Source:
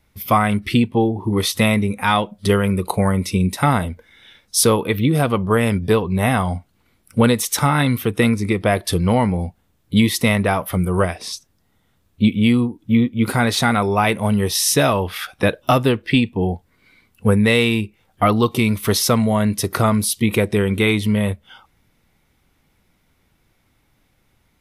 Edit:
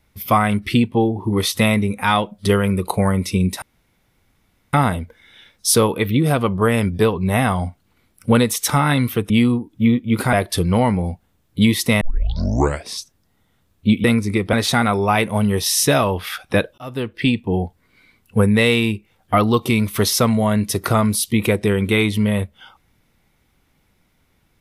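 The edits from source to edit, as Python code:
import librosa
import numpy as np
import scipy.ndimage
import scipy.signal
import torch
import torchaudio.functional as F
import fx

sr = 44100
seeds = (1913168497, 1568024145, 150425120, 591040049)

y = fx.edit(x, sr, fx.insert_room_tone(at_s=3.62, length_s=1.11),
    fx.swap(start_s=8.19, length_s=0.49, other_s=12.39, other_length_s=1.03),
    fx.tape_start(start_s=10.36, length_s=0.86),
    fx.fade_in_span(start_s=15.67, length_s=0.81, curve='qsin'), tone=tone)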